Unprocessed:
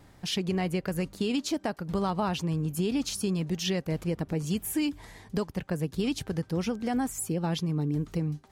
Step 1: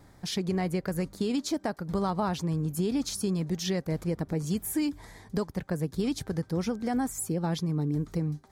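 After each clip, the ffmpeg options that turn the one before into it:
-af "equalizer=f=2800:t=o:w=0.37:g=-10"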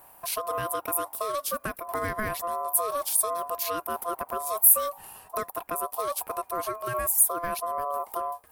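-af "aexciter=amount=12.4:drive=6.8:freq=9700,aeval=exprs='val(0)*sin(2*PI*860*n/s)':c=same,volume=1.12"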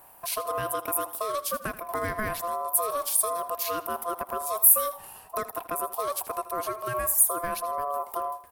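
-af "aecho=1:1:80|160|240:0.168|0.0571|0.0194"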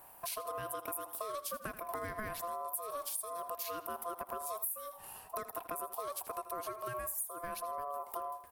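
-af "acompressor=threshold=0.0224:ratio=6,volume=0.668"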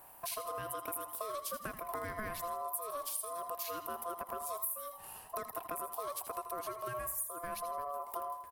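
-af "aecho=1:1:81|162|243|324:0.251|0.111|0.0486|0.0214"

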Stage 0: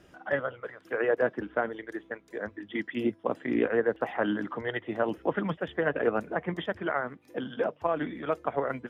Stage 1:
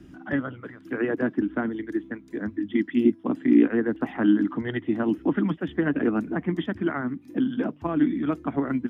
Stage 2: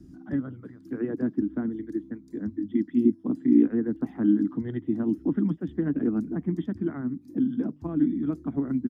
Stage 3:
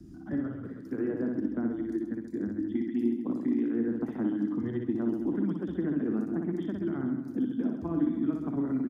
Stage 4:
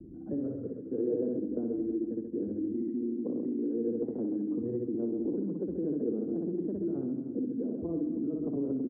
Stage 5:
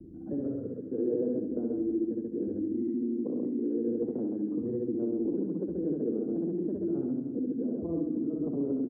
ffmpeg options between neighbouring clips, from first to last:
-filter_complex "[0:a]lowshelf=f=380:t=q:w=3:g=10,acrossover=split=260|1100[s0][s1][s2];[s0]acompressor=threshold=0.0316:ratio=6[s3];[s3][s1][s2]amix=inputs=3:normalize=0"
-af "firequalizer=gain_entry='entry(250,0);entry(550,-11);entry(2900,-20);entry(4400,-3)':delay=0.05:min_phase=1"
-filter_complex "[0:a]acrossover=split=270|1300[s0][s1][s2];[s0]acompressor=threshold=0.0141:ratio=4[s3];[s1]acompressor=threshold=0.0282:ratio=4[s4];[s2]acompressor=threshold=0.002:ratio=4[s5];[s3][s4][s5]amix=inputs=3:normalize=0,asplit=2[s6][s7];[s7]aecho=0:1:60|132|218.4|322.1|446.5:0.631|0.398|0.251|0.158|0.1[s8];[s6][s8]amix=inputs=2:normalize=0"
-af "alimiter=level_in=1.41:limit=0.0631:level=0:latency=1:release=63,volume=0.708,lowpass=f=480:t=q:w=4.9,volume=0.75"
-af "aecho=1:1:72:0.447"

